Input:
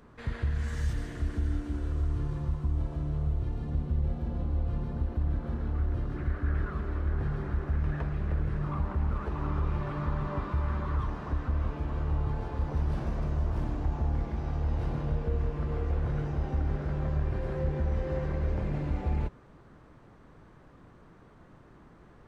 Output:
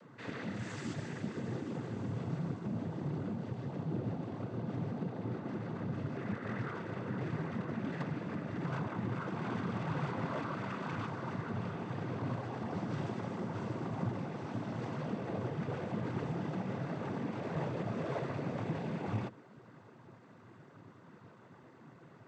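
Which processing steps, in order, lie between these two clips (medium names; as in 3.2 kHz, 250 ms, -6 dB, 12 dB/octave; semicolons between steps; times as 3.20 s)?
wavefolder -30 dBFS; noise-vocoded speech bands 16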